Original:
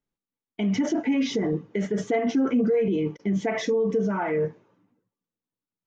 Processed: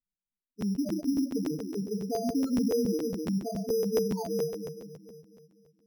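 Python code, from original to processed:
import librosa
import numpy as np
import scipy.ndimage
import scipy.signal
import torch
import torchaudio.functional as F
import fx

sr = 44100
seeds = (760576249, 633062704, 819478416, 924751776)

y = fx.echo_split(x, sr, split_hz=410.0, low_ms=248, high_ms=116, feedback_pct=52, wet_db=-4.5)
y = fx.spec_topn(y, sr, count=4)
y = np.repeat(scipy.signal.resample_poly(y, 1, 8), 8)[:len(y)]
y = fx.buffer_crackle(y, sr, first_s=0.6, period_s=0.14, block=512, kind='repeat')
y = y * librosa.db_to_amplitude(-5.5)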